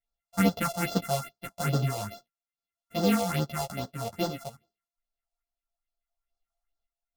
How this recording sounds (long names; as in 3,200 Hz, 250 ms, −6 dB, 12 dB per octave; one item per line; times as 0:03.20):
a buzz of ramps at a fixed pitch in blocks of 64 samples
phaser sweep stages 4, 2.4 Hz, lowest notch 270–2,300 Hz
sample-and-hold tremolo
a shimmering, thickened sound